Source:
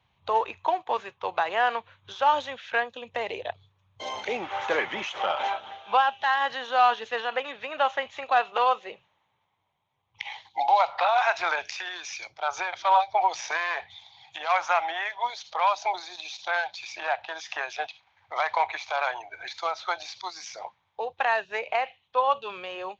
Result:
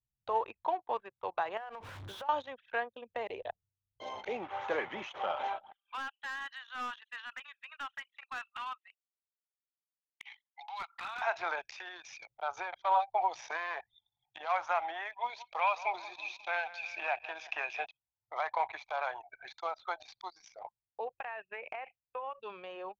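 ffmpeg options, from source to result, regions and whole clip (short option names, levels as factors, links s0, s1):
-filter_complex "[0:a]asettb=1/sr,asplit=3[s0][s1][s2];[s0]atrim=end=1.574[s3];[s1]atrim=start=1.57:end=2.29,asetpts=PTS-STARTPTS,afade=t=in:d=0.004:c=qsin,afade=t=out:st=0.716:d=0.004:c=qsin,aeval=exprs='val(0)+0.5*0.0224*sgn(val(0))':c=same,acompressor=threshold=0.0251:ratio=10:attack=3.2:release=140:knee=1:detection=peak[s4];[s2]atrim=start=2.286[s5];[s3][s4]acrossfade=d=0.004:c1=hsin:c2=qsin[s6];[s6][s5]acrossfade=d=0.004:c1=qsin:c2=hsin,asettb=1/sr,asplit=3[s7][s8][s9];[s7]atrim=end=5.724[s10];[s8]atrim=start=5.72:end=11.22,asetpts=PTS-STARTPTS,afade=t=in:d=0.004:c=qsin,afade=t=out:st=5.496:d=0.004:c=qsin,highpass=f=1300:w=0.5412,highpass=f=1300:w=1.3066,asoftclip=type=hard:threshold=0.0531[s11];[s9]atrim=start=11.216[s12];[s10][s11]acrossfade=d=0.004:c1=hsin:c2=qsin[s13];[s13][s12]acrossfade=d=0.004:c1=qsin:c2=hsin,asettb=1/sr,asplit=3[s14][s15][s16];[s14]atrim=end=15.124[s17];[s15]atrim=start=15.12:end=17.86,asetpts=PTS-STARTPTS,afade=t=in:d=0.004:c=qsin,afade=t=out:st=2.736:d=0.004:c=qsin,equalizer=f=2500:t=o:w=0.34:g=14,aecho=1:1:178|356|534|712|890:0.158|0.084|0.0445|0.0236|0.0125,atrim=end_sample=120834[s18];[s16]atrim=start=17.856[s19];[s17][s18]acrossfade=d=0.004:c1=hsin:c2=qsin[s20];[s20][s19]acrossfade=d=0.004:c1=qsin:c2=hsin,asettb=1/sr,asplit=3[s21][s22][s23];[s21]atrim=end=21.074[s24];[s22]atrim=start=21.07:end=22.41,asetpts=PTS-STARTPTS,afade=t=in:d=0.004:c=qsin,afade=t=out:st=1.336:d=0.004:c=qsin,highshelf=f=3700:t=q:w=3:g=-13.5,acompressor=threshold=0.0398:ratio=8:attack=3.2:release=140:knee=1:detection=peak[s25];[s23]atrim=start=22.406[s26];[s24][s25]acrossfade=d=0.004:c1=hsin:c2=qsin[s27];[s27][s26]acrossfade=d=0.004:c1=qsin:c2=hsin,anlmdn=0.631,highshelf=f=2100:g=-9,volume=0.501"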